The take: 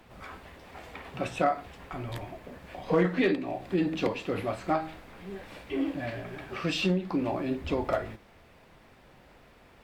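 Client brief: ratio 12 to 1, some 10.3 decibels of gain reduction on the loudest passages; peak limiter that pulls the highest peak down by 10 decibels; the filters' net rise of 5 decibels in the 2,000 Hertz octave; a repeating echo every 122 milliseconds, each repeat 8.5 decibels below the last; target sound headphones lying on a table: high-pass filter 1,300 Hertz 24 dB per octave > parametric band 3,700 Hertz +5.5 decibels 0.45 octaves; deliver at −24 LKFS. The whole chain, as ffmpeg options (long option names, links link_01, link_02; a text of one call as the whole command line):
ffmpeg -i in.wav -af "equalizer=frequency=2000:width_type=o:gain=6,acompressor=threshold=-29dB:ratio=12,alimiter=level_in=5dB:limit=-24dB:level=0:latency=1,volume=-5dB,highpass=frequency=1300:width=0.5412,highpass=frequency=1300:width=1.3066,equalizer=frequency=3700:width_type=o:width=0.45:gain=5.5,aecho=1:1:122|244|366|488:0.376|0.143|0.0543|0.0206,volume=18.5dB" out.wav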